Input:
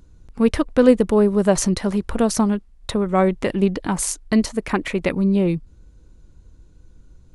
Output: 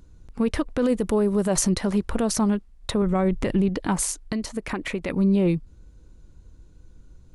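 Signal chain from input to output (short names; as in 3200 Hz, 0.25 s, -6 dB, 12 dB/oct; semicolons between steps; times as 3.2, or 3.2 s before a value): 3.02–3.69 low shelf 170 Hz +10.5 dB; limiter -12.5 dBFS, peak gain reduction 11.5 dB; 0.82–1.7 high shelf 8200 Hz +8.5 dB; 4.25–5.09 compressor 4:1, threshold -24 dBFS, peak gain reduction 7 dB; gain -1 dB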